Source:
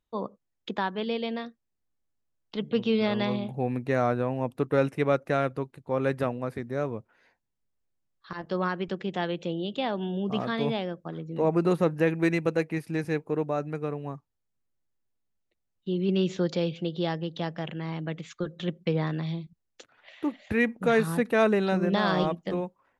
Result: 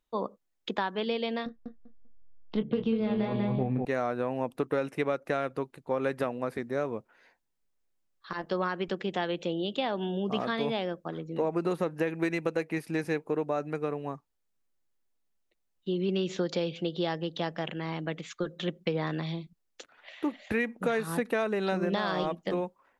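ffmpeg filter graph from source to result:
ffmpeg -i in.wav -filter_complex "[0:a]asettb=1/sr,asplit=3[link_01][link_02][link_03];[link_01]atrim=end=1.464[link_04];[link_02]atrim=start=1.46:end=3.85,asetpts=PTS-STARTPTS,afade=type=in:duration=0.004:curve=qsin,afade=type=out:start_time=2.386:duration=0.004:curve=qsin,aemphasis=mode=reproduction:type=riaa,asplit=2[link_05][link_06];[link_06]adelay=23,volume=-8.5dB[link_07];[link_05][link_07]amix=inputs=2:normalize=0,atrim=end_sample=105399,asplit=2[link_08][link_09];[link_09]adelay=196,lowpass=frequency=3400:poles=1,volume=-3.5dB,asplit=2[link_10][link_11];[link_11]adelay=196,lowpass=frequency=3400:poles=1,volume=0.19,asplit=2[link_12][link_13];[link_13]adelay=196,lowpass=frequency=3400:poles=1,volume=0.19[link_14];[link_08][link_10][link_12][link_14]amix=inputs=4:normalize=0,atrim=end_sample=105399[link_15];[link_03]atrim=start=3.846[link_16];[link_04][link_15]acrossfade=duration=0.004:curve1=hsin:curve2=qsin[link_17];[link_17][link_16]acrossfade=duration=0.004:curve1=qsin:curve2=hsin,equalizer=frequency=98:width=0.81:gain=-10.5,acompressor=threshold=-27dB:ratio=12,volume=2.5dB" out.wav

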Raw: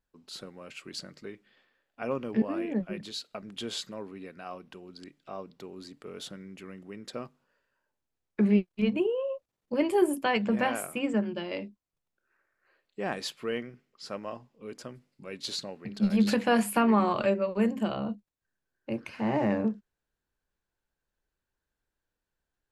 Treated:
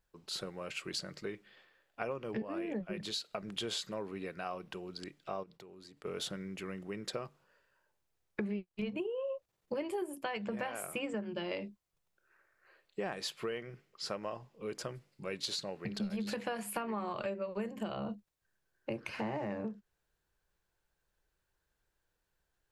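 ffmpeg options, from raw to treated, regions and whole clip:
ffmpeg -i in.wav -filter_complex "[0:a]asettb=1/sr,asplit=3[link_01][link_02][link_03];[link_01]atrim=end=5.434[link_04];[link_02]atrim=start=5.43:end=6.05,asetpts=PTS-STARTPTS,afade=type=in:duration=0.004:curve=qsin,afade=type=out:start_time=0.616:duration=0.004:curve=qsin,agate=range=-33dB:threshold=-60dB:ratio=3:release=100:detection=peak,acompressor=threshold=-57dB:ratio=3:attack=3.2:release=140:knee=1:detection=peak[link_05];[link_03]atrim=start=6.046[link_06];[link_04][link_05]acrossfade=duration=0.004:curve1=hsin:curve2=qsin[link_07];[link_07][link_06]acrossfade=duration=0.004:curve1=qsin:curve2=hsin,equalizer=frequency=250:width_type=o:width=0.25:gain=-13.5,acompressor=threshold=-38dB:ratio=12,volume=4dB" out.wav

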